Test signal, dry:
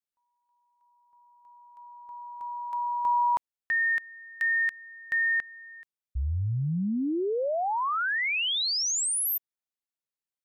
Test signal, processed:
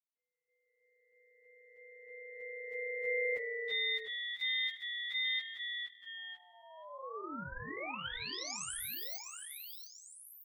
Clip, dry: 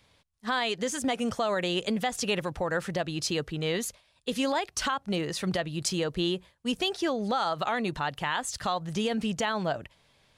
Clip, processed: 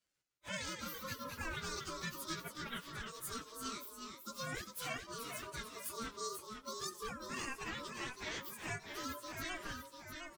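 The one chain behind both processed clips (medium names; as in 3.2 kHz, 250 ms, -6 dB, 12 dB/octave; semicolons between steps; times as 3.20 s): frequency axis rescaled in octaves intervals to 122%; high-pass 420 Hz 12 dB/octave; spectral noise reduction 9 dB; dynamic bell 740 Hz, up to -4 dB, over -41 dBFS, Q 0.86; ring modulator 800 Hz; ever faster or slower copies 146 ms, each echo -1 st, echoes 2, each echo -6 dB; on a send: frequency-shifting echo 86 ms, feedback 49%, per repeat +39 Hz, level -22 dB; on the sum: trim -5 dB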